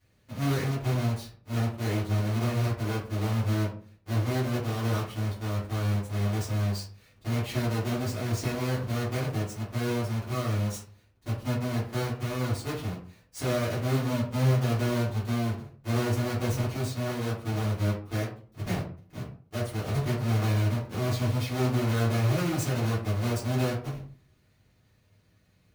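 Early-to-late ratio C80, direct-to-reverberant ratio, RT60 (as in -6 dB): 11.5 dB, -8.5 dB, 0.45 s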